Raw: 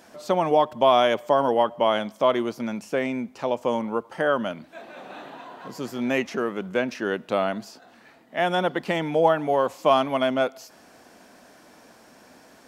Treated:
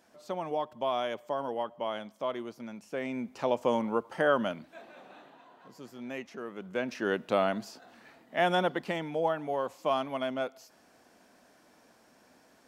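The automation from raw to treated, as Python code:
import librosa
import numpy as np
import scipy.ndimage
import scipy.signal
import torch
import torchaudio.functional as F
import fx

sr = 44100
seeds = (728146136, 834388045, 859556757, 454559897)

y = fx.gain(x, sr, db=fx.line((2.82, -13.0), (3.36, -3.0), (4.47, -3.0), (5.35, -15.0), (6.37, -15.0), (7.1, -3.0), (8.53, -3.0), (9.1, -10.0)))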